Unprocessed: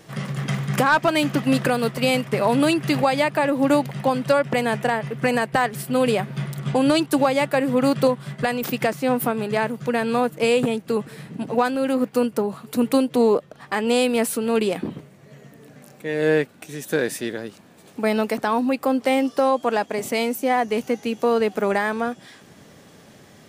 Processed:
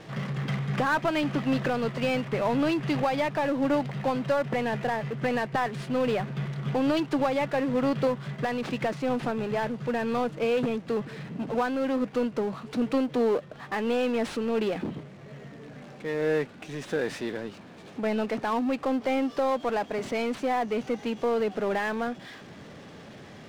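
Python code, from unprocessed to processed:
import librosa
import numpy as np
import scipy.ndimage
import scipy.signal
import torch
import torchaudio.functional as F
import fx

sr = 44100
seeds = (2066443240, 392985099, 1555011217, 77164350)

y = fx.cvsd(x, sr, bps=64000)
y = scipy.signal.sosfilt(scipy.signal.butter(2, 4000.0, 'lowpass', fs=sr, output='sos'), y)
y = fx.power_curve(y, sr, exponent=0.7)
y = F.gain(torch.from_numpy(y), -8.5).numpy()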